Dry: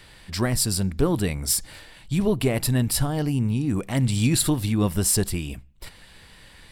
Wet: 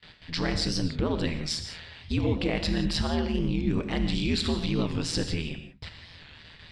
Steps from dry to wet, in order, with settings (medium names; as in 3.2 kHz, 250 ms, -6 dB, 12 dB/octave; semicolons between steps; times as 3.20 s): gate with hold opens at -38 dBFS; low-pass 4.3 kHz 24 dB/octave; treble shelf 3.3 kHz +11.5 dB; peak limiter -15.5 dBFS, peak gain reduction 7 dB; ring modulator 81 Hz; gated-style reverb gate 200 ms flat, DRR 7 dB; warped record 45 rpm, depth 160 cents